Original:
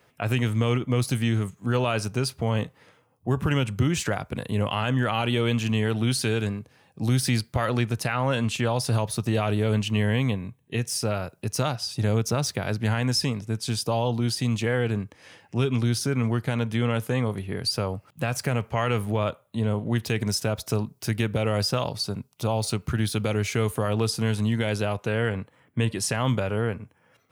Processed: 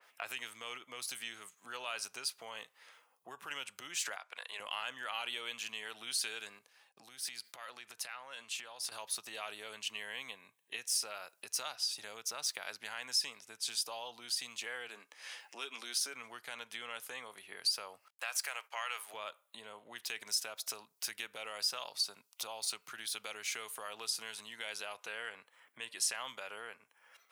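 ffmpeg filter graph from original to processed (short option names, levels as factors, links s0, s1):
-filter_complex "[0:a]asettb=1/sr,asplit=3[s0][s1][s2];[s0]atrim=end=4.164[s3];[s1]atrim=start=4.16:end=4.6,asetpts=PTS-STARTPTS,afade=t=in:d=0.004:c=qsin,afade=t=out:st=0.436:d=0.004:c=qsin,highpass=710,aemphasis=mode=reproduction:type=50fm[s4];[s2]atrim=start=4.596[s5];[s3][s4]acrossfade=d=0.004:c1=hsin:c2=qsin[s6];[s6][s5]acrossfade=d=0.004:c1=qsin:c2=hsin,asettb=1/sr,asplit=3[s7][s8][s9];[s7]atrim=end=6.584[s10];[s8]atrim=start=6.58:end=8.92,asetpts=PTS-STARTPTS,afade=t=in:d=0.004:c=qsin,afade=t=out:st=2.336:d=0.004:c=qsin,agate=range=0.0224:threshold=0.002:ratio=3:release=100:detection=peak,acompressor=threshold=0.02:ratio=6:attack=3.2:release=140:knee=1:detection=peak[s11];[s9]atrim=start=8.916[s12];[s10][s11]acrossfade=d=0.004:c1=hsin:c2=qsin[s13];[s13][s12]acrossfade=d=0.004:c1=qsin:c2=hsin,asettb=1/sr,asplit=3[s14][s15][s16];[s14]atrim=end=14.894[s17];[s15]atrim=start=14.89:end=16.14,asetpts=PTS-STARTPTS,afade=t=in:d=0.004:c=qsin,afade=t=out:st=1.246:d=0.004:c=qsin,highpass=f=220:w=0.5412,highpass=f=220:w=1.3066,asplit=2[s18][s19];[s19]adelay=14,volume=0.211[s20];[s18][s20]amix=inputs=2:normalize=0,atrim=end_sample=55125[s21];[s16]atrim=start=16.136[s22];[s17][s21]acrossfade=d=0.004:c1=hsin:c2=qsin[s23];[s23][s22]acrossfade=d=0.004:c1=qsin:c2=hsin,asettb=1/sr,asplit=3[s24][s25][s26];[s24]atrim=end=18.084[s27];[s25]atrim=start=18.08:end=19.14,asetpts=PTS-STARTPTS,afade=t=in:d=0.004:c=qsin,afade=t=out:st=1.056:d=0.004:c=qsin,highpass=690,agate=range=0.0224:threshold=0.00355:ratio=3:release=100:detection=peak[s28];[s26]atrim=start=19.136[s29];[s27][s28]acrossfade=d=0.004:c1=hsin:c2=qsin[s30];[s30][s29]acrossfade=d=0.004:c1=qsin:c2=hsin,acompressor=threshold=0.00708:ratio=2,highpass=980,adynamicequalizer=threshold=0.002:dfrequency=2600:dqfactor=0.7:tfrequency=2600:tqfactor=0.7:attack=5:release=100:ratio=0.375:range=2.5:mode=boostabove:tftype=highshelf,volume=1.12"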